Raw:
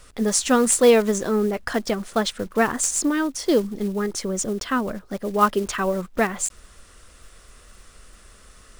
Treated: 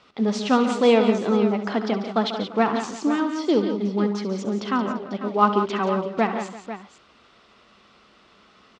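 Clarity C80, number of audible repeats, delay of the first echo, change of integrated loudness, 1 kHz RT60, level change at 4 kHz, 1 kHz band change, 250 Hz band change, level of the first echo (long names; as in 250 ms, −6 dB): no reverb audible, 5, 68 ms, −0.5 dB, no reverb audible, −1.5 dB, +1.5 dB, +1.5 dB, −12.5 dB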